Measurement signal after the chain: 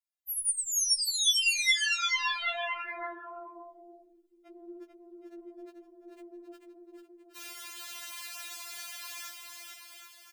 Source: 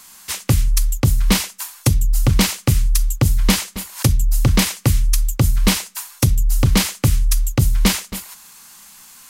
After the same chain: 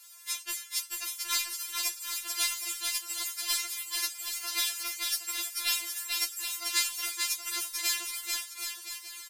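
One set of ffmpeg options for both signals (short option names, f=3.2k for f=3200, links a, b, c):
-af "highpass=1.4k,aeval=exprs='0.631*(cos(1*acos(clip(val(0)/0.631,-1,1)))-cos(1*PI/2))+0.00794*(cos(6*acos(clip(val(0)/0.631,-1,1)))-cos(6*PI/2))':c=same,afftfilt=real='hypot(re,im)*cos(2*PI*random(0))':imag='hypot(re,im)*sin(2*PI*random(1))':win_size=512:overlap=0.75,aecho=1:1:440|770|1018|1203|1342:0.631|0.398|0.251|0.158|0.1,afftfilt=real='re*4*eq(mod(b,16),0)':imag='im*4*eq(mod(b,16),0)':win_size=2048:overlap=0.75"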